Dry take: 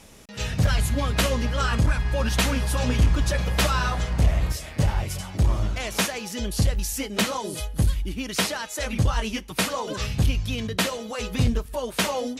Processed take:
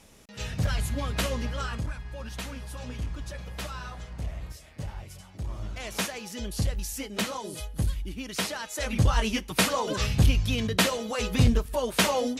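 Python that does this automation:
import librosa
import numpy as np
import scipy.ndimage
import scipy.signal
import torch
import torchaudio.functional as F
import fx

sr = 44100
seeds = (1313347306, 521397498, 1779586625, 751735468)

y = fx.gain(x, sr, db=fx.line((1.48, -6.0), (2.01, -14.5), (5.44, -14.5), (5.89, -6.0), (8.39, -6.0), (9.21, 1.0)))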